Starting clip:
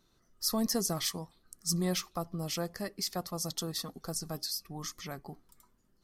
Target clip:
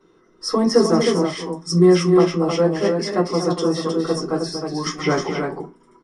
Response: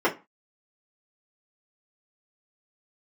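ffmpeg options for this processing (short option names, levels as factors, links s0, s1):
-filter_complex "[0:a]equalizer=f=750:t=o:w=0.47:g=-4[s0];[1:a]atrim=start_sample=2205[s1];[s0][s1]afir=irnorm=-1:irlink=0,asettb=1/sr,asplit=3[s2][s3][s4];[s2]atrim=end=4.864[s5];[s3]atrim=start=4.86:end=5.3,asetpts=PTS-STARTPTS,afade=t=in:d=0.004:c=qsin,afade=t=out:st=0.436:d=0.004:c=qsin,acontrast=90[s6];[s4]atrim=start=5.296[s7];[s5][s6]acrossfade=d=0.004:c1=hsin:c2=qsin[s8];[s8][s7]acrossfade=d=0.004:c1=qsin:c2=hsin,aresample=22050,aresample=44100,aecho=1:1:238|312:0.355|0.562"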